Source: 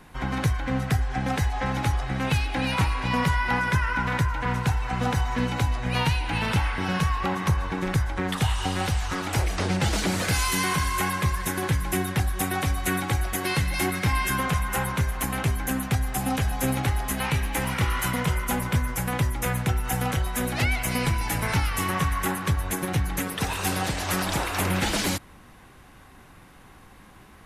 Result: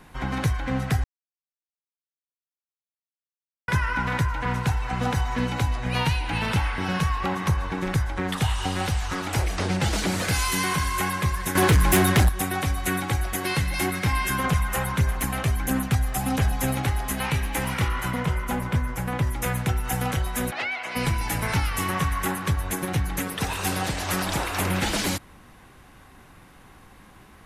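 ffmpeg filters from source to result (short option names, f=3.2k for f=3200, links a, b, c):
-filter_complex "[0:a]asettb=1/sr,asplit=3[a][b][c];[a]atrim=end=11.554[d];[b]atrim=start=11.55:end=12.29,asetpts=PTS-STARTPTS,afade=t=in:d=0.004:c=qsin,afade=t=out:st=0.736:d=0.004:c=qsin,aeval=exprs='0.224*sin(PI/2*2.24*val(0)/0.224)':c=same[e];[c]atrim=start=12.286[f];[d][e]acrossfade=d=0.004:c1=hsin:c2=qsin[g];[g][f]acrossfade=d=0.004:c1=qsin:c2=hsin,asettb=1/sr,asplit=3[h][i][j];[h]atrim=end=14.444[k];[i]atrim=start=14.44:end=16.75,asetpts=PTS-STARTPTS,afade=t=in:d=0.004:c=qsin,afade=t=out:st=2.306:d=0.004:c=qsin,aphaser=in_gain=1:out_gain=1:delay=1.7:decay=0.31:speed=1.5:type=sinusoidal[l];[j]atrim=start=16.746[m];[k][l]acrossfade=d=0.004:c1=hsin:c2=qsin[n];[n][m]acrossfade=d=0.004:c1=qsin:c2=hsin,asettb=1/sr,asplit=3[o][p][q];[o]atrim=end=17.884[r];[p]atrim=start=17.88:end=19.27,asetpts=PTS-STARTPTS,afade=t=in:d=0.004:c=qsin,afade=t=out:st=1.386:d=0.004:c=qsin,highshelf=f=3.2k:g=-8.5[s];[q]atrim=start=19.266[t];[r][s]acrossfade=d=0.004:c1=hsin:c2=qsin[u];[u][t]acrossfade=d=0.004:c1=qsin:c2=hsin,asplit=3[v][w][x];[v]afade=t=out:st=20.5:d=0.02[y];[w]highpass=530,lowpass=3.5k,afade=t=in:st=20.5:d=0.02,afade=t=out:st=20.95:d=0.02[z];[x]afade=t=in:st=20.95:d=0.02[aa];[y][z][aa]amix=inputs=3:normalize=0,asplit=3[ab][ac][ad];[ab]atrim=end=1.04,asetpts=PTS-STARTPTS,afade=t=out:st=1.036:d=0.004:c=hsin[ae];[ac]atrim=start=1.04:end=3.68,asetpts=PTS-STARTPTS,volume=0[af];[ad]atrim=start=3.68,asetpts=PTS-STARTPTS,afade=t=in:d=0.004:c=hsin[ag];[ae][af][ag]concat=n=3:v=0:a=1"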